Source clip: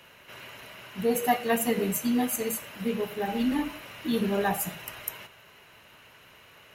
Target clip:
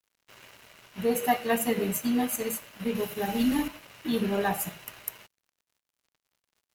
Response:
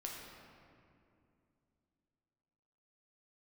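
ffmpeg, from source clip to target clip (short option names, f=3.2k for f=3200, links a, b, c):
-filter_complex "[0:a]asettb=1/sr,asplit=3[a][b][c];[a]atrim=end=2.954[d];[b]atrim=start=2.95:end=3.68,asetpts=PTS-STARTPTS,afade=t=in:d=0.004:c=qsin,afade=t=out:st=0.726:d=0.004:c=qsin,bass=f=250:g=4,treble=f=4k:g=9[e];[c]atrim=start=3.676[f];[d][e]acrossfade=d=0.004:c1=hsin:c2=qsin[g];[g][f]acrossfade=d=0.004:c1=qsin:c2=hsin,aeval=exprs='sgn(val(0))*max(abs(val(0))-0.00501,0)':c=same"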